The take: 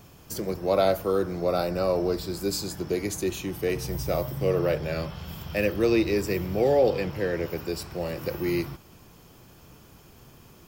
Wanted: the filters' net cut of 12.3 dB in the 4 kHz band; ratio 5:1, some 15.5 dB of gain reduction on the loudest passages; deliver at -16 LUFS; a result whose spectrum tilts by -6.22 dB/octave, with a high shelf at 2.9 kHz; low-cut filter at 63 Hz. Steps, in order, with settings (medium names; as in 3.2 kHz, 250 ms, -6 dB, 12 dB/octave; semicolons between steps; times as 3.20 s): high-pass 63 Hz; treble shelf 2.9 kHz -8.5 dB; peaking EQ 4 kHz -8.5 dB; compression 5:1, threshold -36 dBFS; trim +23.5 dB